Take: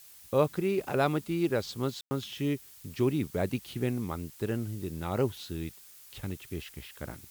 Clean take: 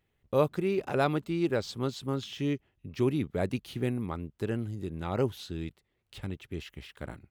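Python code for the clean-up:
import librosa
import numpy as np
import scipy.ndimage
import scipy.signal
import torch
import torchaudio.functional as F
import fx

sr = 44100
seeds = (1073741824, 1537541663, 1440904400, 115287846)

y = fx.fix_ambience(x, sr, seeds[0], print_start_s=5.69, print_end_s=6.19, start_s=2.01, end_s=2.11)
y = fx.noise_reduce(y, sr, print_start_s=5.69, print_end_s=6.19, reduce_db=22.0)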